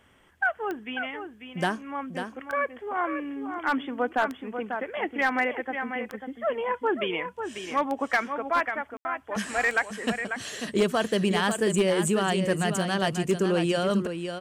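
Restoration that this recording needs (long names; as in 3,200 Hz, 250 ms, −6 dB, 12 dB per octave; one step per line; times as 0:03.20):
clipped peaks rebuilt −16 dBFS
click removal
ambience match 0:08.97–0:09.05
echo removal 543 ms −8 dB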